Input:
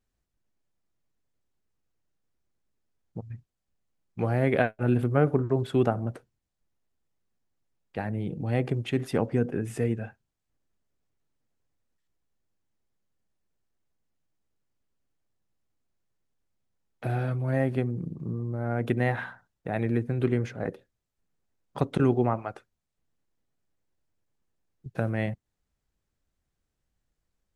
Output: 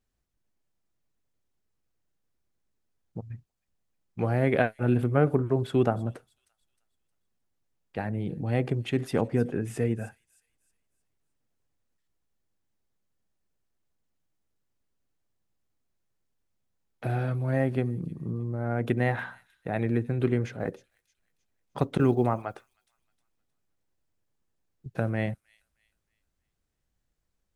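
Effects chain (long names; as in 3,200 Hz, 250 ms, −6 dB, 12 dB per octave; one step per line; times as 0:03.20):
0:20.60–0:22.35: floating-point word with a short mantissa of 6 bits
delay with a high-pass on its return 311 ms, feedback 38%, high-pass 5,500 Hz, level −10 dB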